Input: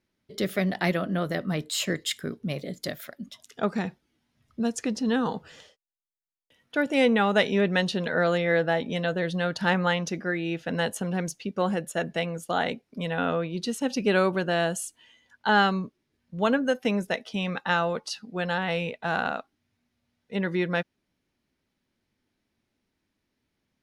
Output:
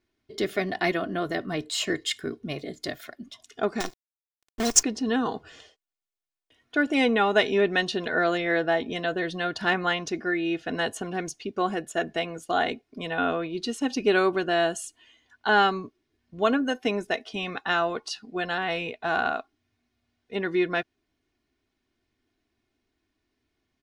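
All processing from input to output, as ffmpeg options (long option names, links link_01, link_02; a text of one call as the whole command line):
ffmpeg -i in.wav -filter_complex "[0:a]asettb=1/sr,asplit=3[link_01][link_02][link_03];[link_01]atrim=end=3.804[link_04];[link_02]atrim=start=3.8:end=4.83,asetpts=PTS-STARTPTS,afade=type=in:duration=0.004:curve=qsin,afade=type=out:start_time=1.026:duration=0.004:curve=qsin,highshelf=frequency=3800:width_type=q:width=3:gain=13.5,acrusher=bits=5:dc=4:mix=0:aa=0.000001[link_05];[link_03]atrim=start=4.826[link_06];[link_04][link_05]acrossfade=duration=0.004:curve1=hsin:curve2=qsin[link_07];[link_07][link_06]acrossfade=duration=0.004:curve1=qsin:curve2=hsin,equalizer=frequency=13000:width=1:gain=-11,aecho=1:1:2.8:0.62" out.wav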